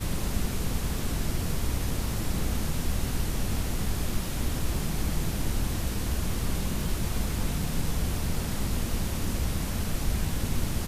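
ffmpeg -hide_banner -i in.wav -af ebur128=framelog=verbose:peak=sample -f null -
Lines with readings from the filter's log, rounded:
Integrated loudness:
  I:         -31.0 LUFS
  Threshold: -41.0 LUFS
Loudness range:
  LRA:         0.2 LU
  Threshold: -51.0 LUFS
  LRA low:   -31.1 LUFS
  LRA high:  -30.9 LUFS
Sample peak:
  Peak:      -14.3 dBFS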